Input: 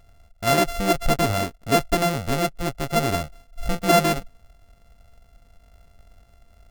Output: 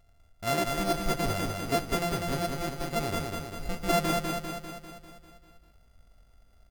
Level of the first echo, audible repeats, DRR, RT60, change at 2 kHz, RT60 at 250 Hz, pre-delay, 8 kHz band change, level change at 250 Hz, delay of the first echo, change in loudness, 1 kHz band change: −3.5 dB, 7, no reverb audible, no reverb audible, −7.5 dB, no reverb audible, no reverb audible, −7.0 dB, −7.0 dB, 198 ms, −8.0 dB, −7.5 dB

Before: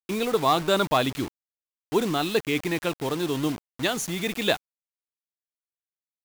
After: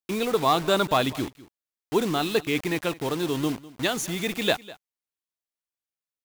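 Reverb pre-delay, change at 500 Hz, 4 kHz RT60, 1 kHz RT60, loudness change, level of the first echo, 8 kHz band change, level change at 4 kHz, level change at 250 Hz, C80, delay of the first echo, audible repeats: no reverb audible, 0.0 dB, no reverb audible, no reverb audible, 0.0 dB, −19.5 dB, 0.0 dB, 0.0 dB, 0.0 dB, no reverb audible, 201 ms, 1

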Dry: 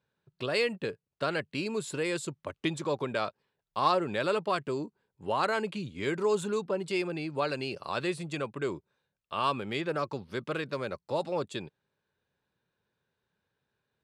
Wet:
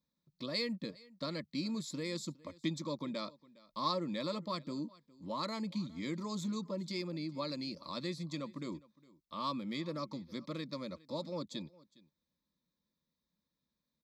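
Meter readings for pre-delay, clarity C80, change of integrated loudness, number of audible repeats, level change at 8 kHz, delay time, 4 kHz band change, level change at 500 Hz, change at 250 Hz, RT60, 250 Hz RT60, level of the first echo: no reverb audible, no reverb audible, −7.5 dB, 1, −6.5 dB, 410 ms, −3.0 dB, −11.5 dB, −2.5 dB, no reverb audible, no reverb audible, −22.5 dB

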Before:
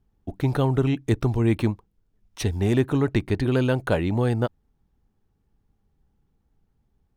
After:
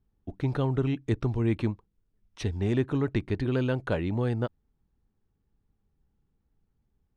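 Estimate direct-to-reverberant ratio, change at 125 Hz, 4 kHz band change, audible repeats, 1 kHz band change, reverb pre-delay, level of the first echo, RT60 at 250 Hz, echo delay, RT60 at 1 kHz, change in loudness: no reverb audible, −5.0 dB, −7.0 dB, no echo audible, −7.0 dB, no reverb audible, no echo audible, no reverb audible, no echo audible, no reverb audible, −5.5 dB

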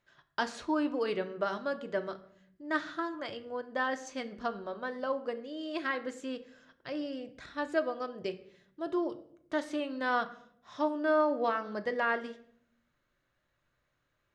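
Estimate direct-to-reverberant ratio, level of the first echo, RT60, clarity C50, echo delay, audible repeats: 7.5 dB, no echo audible, 0.65 s, 15.0 dB, no echo audible, no echo audible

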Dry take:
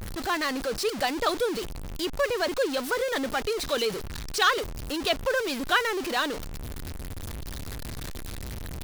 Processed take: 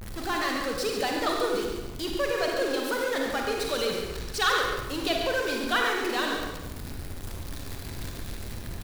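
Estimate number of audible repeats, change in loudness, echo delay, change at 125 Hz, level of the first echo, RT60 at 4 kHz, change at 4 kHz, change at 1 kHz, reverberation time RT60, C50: 1, −0.5 dB, 140 ms, −0.5 dB, −7.5 dB, 0.80 s, −0.5 dB, −0.5 dB, 1.0 s, 0.5 dB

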